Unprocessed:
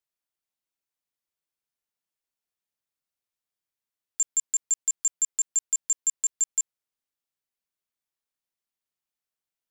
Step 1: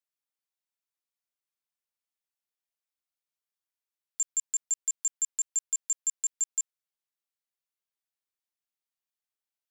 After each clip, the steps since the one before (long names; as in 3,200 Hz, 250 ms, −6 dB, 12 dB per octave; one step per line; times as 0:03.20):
low-shelf EQ 350 Hz −11.5 dB
level −4 dB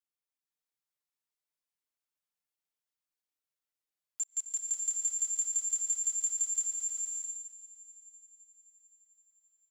comb filter 6.6 ms, depth 72%
echo machine with several playback heads 260 ms, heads first and third, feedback 51%, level −23.5 dB
slow-attack reverb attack 610 ms, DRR −1.5 dB
level −7 dB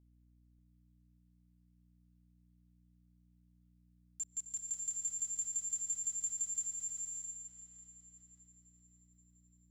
mains-hum notches 50/100/150/200/250/300/350/400/450 Hz
mains hum 60 Hz, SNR 22 dB
delay with a low-pass on its return 589 ms, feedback 45%, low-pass 3,900 Hz, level −8.5 dB
level −6.5 dB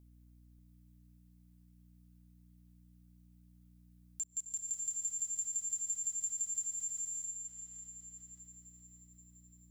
high-shelf EQ 9,300 Hz +9 dB
downward compressor 1.5 to 1, threshold −56 dBFS, peak gain reduction 9.5 dB
level +6 dB